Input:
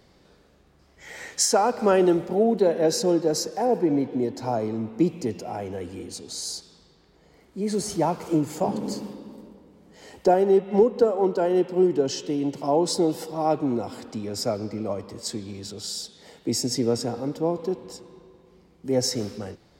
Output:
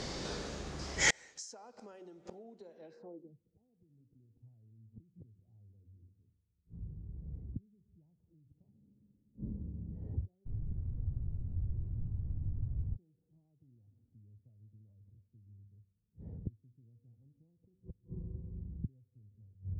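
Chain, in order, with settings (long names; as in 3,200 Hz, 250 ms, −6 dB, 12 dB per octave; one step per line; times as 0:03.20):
hum removal 94.75 Hz, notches 8
downward compressor 8 to 1, threshold −31 dBFS, peak gain reduction 18 dB
gate with flip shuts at −33 dBFS, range −36 dB
0:10.45–0:12.95: background noise pink −51 dBFS
low-pass filter sweep 6,600 Hz → 100 Hz, 0:02.75–0:03.41
level +16.5 dB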